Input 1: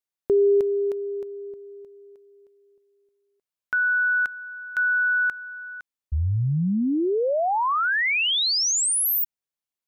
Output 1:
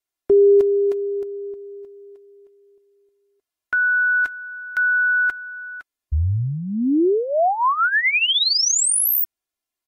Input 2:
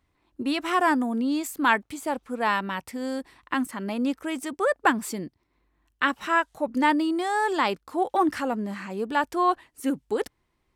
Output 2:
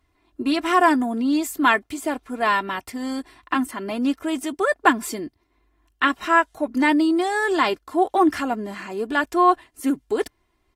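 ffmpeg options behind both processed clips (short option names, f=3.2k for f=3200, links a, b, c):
-af "aecho=1:1:2.9:0.59,volume=2.5dB" -ar 48000 -c:a aac -b:a 48k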